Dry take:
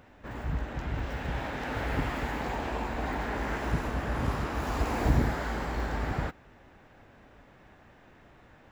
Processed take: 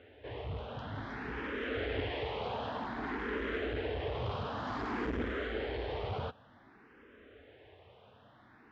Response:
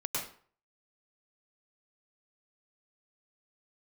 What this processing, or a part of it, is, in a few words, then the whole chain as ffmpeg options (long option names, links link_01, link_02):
barber-pole phaser into a guitar amplifier: -filter_complex "[0:a]asplit=2[link_01][link_02];[link_02]afreqshift=0.54[link_03];[link_01][link_03]amix=inputs=2:normalize=1,asoftclip=type=tanh:threshold=-29dB,highpass=84,equalizer=frequency=89:width_type=q:width=4:gain=4,equalizer=frequency=160:width_type=q:width=4:gain=-10,equalizer=frequency=440:width_type=q:width=4:gain=9,equalizer=frequency=850:width_type=q:width=4:gain=-3,equalizer=frequency=3200:width_type=q:width=4:gain=7,lowpass=frequency=4300:width=0.5412,lowpass=frequency=4300:width=1.3066"